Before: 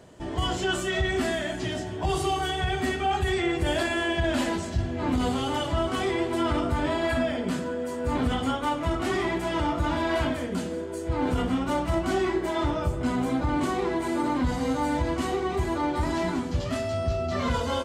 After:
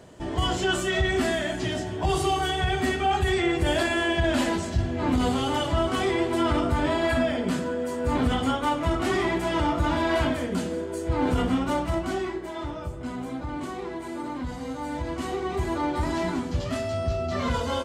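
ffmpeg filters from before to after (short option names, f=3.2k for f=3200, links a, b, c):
-af "volume=9dB,afade=t=out:st=11.54:d=0.88:silence=0.354813,afade=t=in:st=14.78:d=0.94:silence=0.446684"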